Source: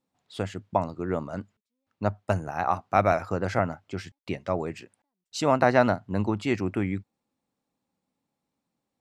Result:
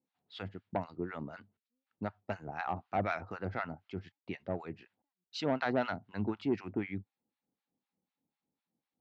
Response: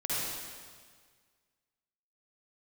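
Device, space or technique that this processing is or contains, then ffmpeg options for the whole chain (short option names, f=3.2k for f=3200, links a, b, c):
guitar amplifier with harmonic tremolo: -filter_complex "[0:a]acrossover=split=870[a][b];[a]aeval=exprs='val(0)*(1-1/2+1/2*cos(2*PI*4*n/s))':c=same[c];[b]aeval=exprs='val(0)*(1-1/2-1/2*cos(2*PI*4*n/s))':c=same[d];[c][d]amix=inputs=2:normalize=0,asoftclip=type=tanh:threshold=-18.5dB,highpass=78,equalizer=f=120:t=q:w=4:g=-6,equalizer=f=580:t=q:w=4:g=-5,equalizer=f=1.1k:t=q:w=4:g=-4,lowpass=f=4.4k:w=0.5412,lowpass=f=4.4k:w=1.3066,volume=-2dB"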